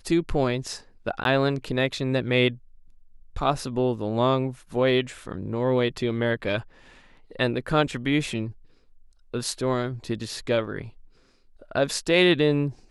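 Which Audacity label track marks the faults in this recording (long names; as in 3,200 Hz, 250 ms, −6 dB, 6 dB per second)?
1.240000	1.250000	drop-out 12 ms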